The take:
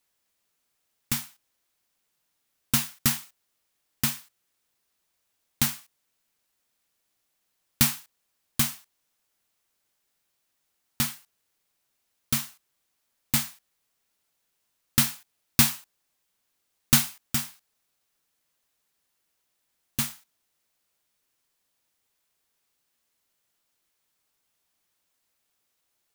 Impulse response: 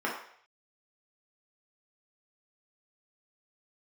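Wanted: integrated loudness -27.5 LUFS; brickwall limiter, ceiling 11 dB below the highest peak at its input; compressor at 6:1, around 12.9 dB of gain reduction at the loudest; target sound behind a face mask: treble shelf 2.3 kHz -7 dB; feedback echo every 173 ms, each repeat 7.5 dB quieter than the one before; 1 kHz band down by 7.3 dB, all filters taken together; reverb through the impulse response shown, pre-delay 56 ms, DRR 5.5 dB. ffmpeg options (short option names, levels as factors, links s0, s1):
-filter_complex "[0:a]equalizer=f=1000:t=o:g=-8,acompressor=threshold=0.0355:ratio=6,alimiter=limit=0.1:level=0:latency=1,aecho=1:1:173|346|519|692|865:0.422|0.177|0.0744|0.0312|0.0131,asplit=2[s0][s1];[1:a]atrim=start_sample=2205,adelay=56[s2];[s1][s2]afir=irnorm=-1:irlink=0,volume=0.178[s3];[s0][s3]amix=inputs=2:normalize=0,highshelf=f=2300:g=-7,volume=7.94"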